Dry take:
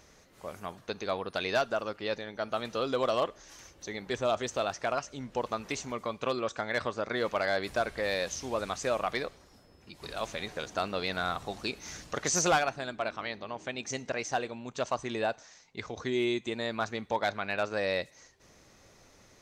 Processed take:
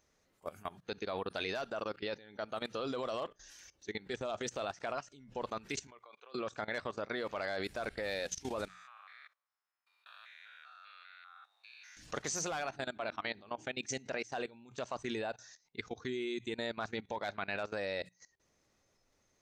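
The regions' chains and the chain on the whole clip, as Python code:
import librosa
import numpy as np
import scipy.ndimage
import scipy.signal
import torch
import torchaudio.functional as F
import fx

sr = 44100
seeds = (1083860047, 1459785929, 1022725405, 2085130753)

y = fx.chain(x, sr, fx.bandpass_edges(low_hz=450.0, high_hz=6400.0),
    fx.level_steps(step_db=13), at=(5.87, 6.35))
y = fx.chain(y, sr, fx.spec_steps(hold_ms=200),
    fx.highpass(hz=1100.0, slope=24),
    fx.peak_eq(hz=6600.0, db=-14.0, octaves=2.6), at=(8.68, 11.97))
y = fx.noise_reduce_blind(y, sr, reduce_db=11)
y = fx.hum_notches(y, sr, base_hz=60, count=3)
y = fx.level_steps(y, sr, step_db=19)
y = y * 10.0 ** (1.0 / 20.0)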